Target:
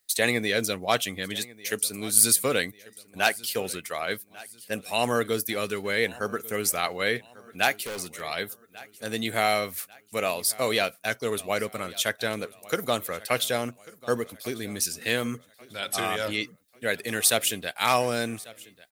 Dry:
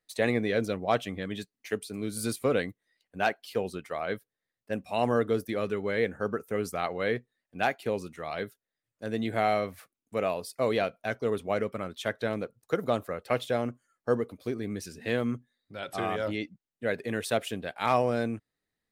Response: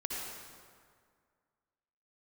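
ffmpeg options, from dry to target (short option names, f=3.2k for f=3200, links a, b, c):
-filter_complex "[0:a]aecho=1:1:1143|2286|3429:0.0891|0.0365|0.015,asettb=1/sr,asplit=3[a][b][c];[a]atrim=end=7.804[d];[b]atrim=start=7.8:end=8.21,asetpts=PTS-STARTPTS,afade=t=in:d=0.004:c=qsin,afade=t=out:st=0.406:d=0.004:c=qsin,asoftclip=type=hard:threshold=-32.5dB[e];[c]atrim=start=8.206[f];[d][e]acrossfade=d=0.004:c1=hsin:c2=qsin[g];[g][f]acrossfade=d=0.004:c1=qsin:c2=hsin,crystalizer=i=8.5:c=0,volume=-1.5dB"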